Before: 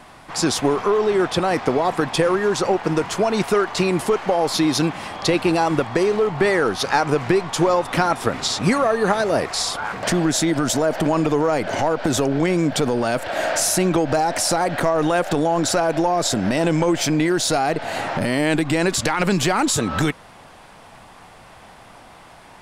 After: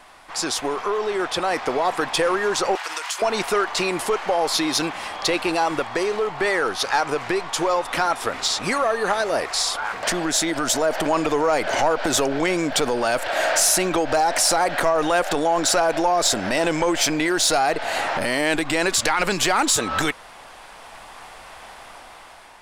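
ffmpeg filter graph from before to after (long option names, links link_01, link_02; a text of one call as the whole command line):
ffmpeg -i in.wav -filter_complex "[0:a]asettb=1/sr,asplit=3[link_01][link_02][link_03];[link_01]atrim=end=2.754[link_04];[link_02]atrim=start=2.75:end=3.22,asetpts=PTS-STARTPTS,afade=type=in:duration=0.004:curve=qsin,afade=type=out:start_time=0.466:duration=0.004:curve=qsin,highpass=910,highshelf=frequency=2700:gain=9.5,acompressor=threshold=-25dB:ratio=10:attack=3.2:release=140:knee=1:detection=peak[link_05];[link_03]atrim=start=3.216[link_06];[link_04][link_05]acrossfade=duration=0.004:curve1=hsin:curve2=qsin[link_07];[link_07][link_06]acrossfade=duration=0.004:curve1=qsin:curve2=hsin,dynaudnorm=framelen=590:gausssize=5:maxgain=11.5dB,equalizer=frequency=140:width=0.5:gain=-14.5,acontrast=45,volume=-7dB" out.wav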